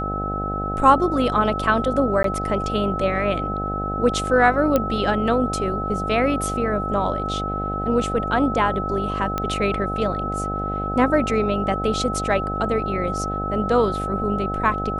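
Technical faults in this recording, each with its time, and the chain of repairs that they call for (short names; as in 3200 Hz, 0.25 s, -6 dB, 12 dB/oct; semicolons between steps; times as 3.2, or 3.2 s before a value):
buzz 50 Hz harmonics 16 -28 dBFS
tone 1300 Hz -26 dBFS
2.23–2.24 gap 13 ms
4.76 pop -6 dBFS
9.38 pop -10 dBFS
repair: de-click; de-hum 50 Hz, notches 16; notch 1300 Hz, Q 30; interpolate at 2.23, 13 ms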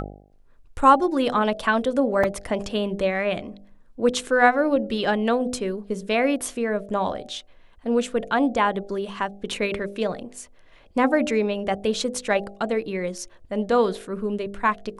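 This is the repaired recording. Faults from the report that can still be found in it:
none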